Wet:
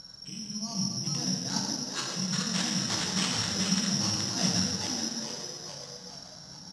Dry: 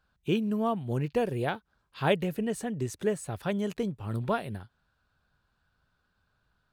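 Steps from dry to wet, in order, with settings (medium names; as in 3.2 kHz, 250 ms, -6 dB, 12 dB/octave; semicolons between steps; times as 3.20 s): level-controlled noise filter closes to 1.6 kHz, open at -26.5 dBFS; peaking EQ 460 Hz -13.5 dB 1.1 oct; hum notches 50/100/150/200 Hz; compressor with a negative ratio -45 dBFS, ratio -1; added noise brown -58 dBFS; on a send: frequency-shifting echo 424 ms, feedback 50%, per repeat +130 Hz, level -4.5 dB; on the sum: gated-style reverb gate 430 ms falling, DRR -2 dB; careless resampling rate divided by 8×, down none, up zero stuff; cabinet simulation 110–6200 Hz, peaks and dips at 180 Hz +8 dB, 370 Hz -9 dB, 2.4 kHz -8 dB; trim +3.5 dB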